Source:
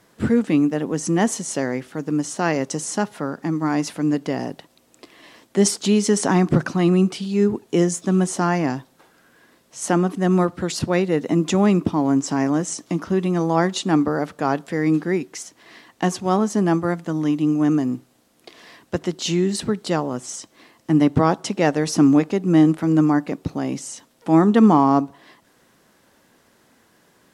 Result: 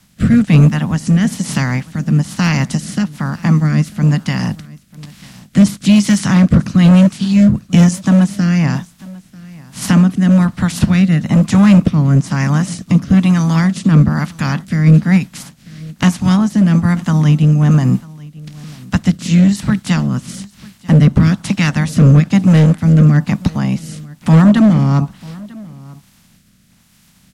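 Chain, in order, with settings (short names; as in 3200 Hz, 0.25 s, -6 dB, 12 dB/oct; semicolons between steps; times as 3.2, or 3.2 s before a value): spectral limiter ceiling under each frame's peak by 22 dB; resonant low shelf 280 Hz +12.5 dB, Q 3; in parallel at +2.5 dB: compressor, threshold -20 dBFS, peak gain reduction 20.5 dB; on the sum: overloaded stage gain 1 dB; rotary speaker horn 1.1 Hz; on a send: echo 0.943 s -22.5 dB; on the sum: gain -2 dB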